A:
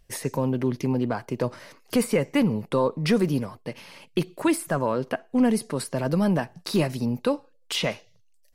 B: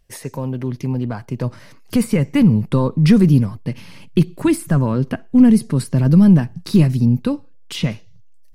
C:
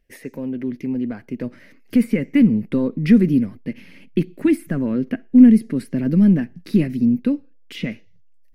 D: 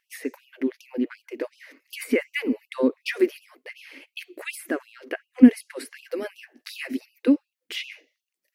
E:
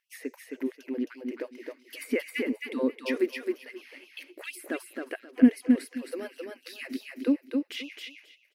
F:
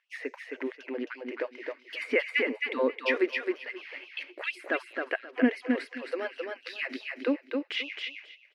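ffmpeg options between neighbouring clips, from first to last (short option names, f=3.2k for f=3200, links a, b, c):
-af "asubboost=boost=8:cutoff=210,dynaudnorm=f=240:g=17:m=11.5dB,volume=-1dB"
-af "equalizer=f=125:t=o:w=1:g=-10,equalizer=f=250:t=o:w=1:g=10,equalizer=f=500:t=o:w=1:g=3,equalizer=f=1k:t=o:w=1:g=-11,equalizer=f=2k:t=o:w=1:g=10,equalizer=f=4k:t=o:w=1:g=-4,equalizer=f=8k:t=o:w=1:g=-8,volume=-6.5dB"
-af "afftfilt=real='re*gte(b*sr/1024,230*pow(2600/230,0.5+0.5*sin(2*PI*2.7*pts/sr)))':imag='im*gte(b*sr/1024,230*pow(2600/230,0.5+0.5*sin(2*PI*2.7*pts/sr)))':win_size=1024:overlap=0.75,volume=3.5dB"
-af "aecho=1:1:266|532|798:0.631|0.12|0.0228,volume=-6dB"
-af "highpass=590,lowpass=2.9k,volume=8.5dB"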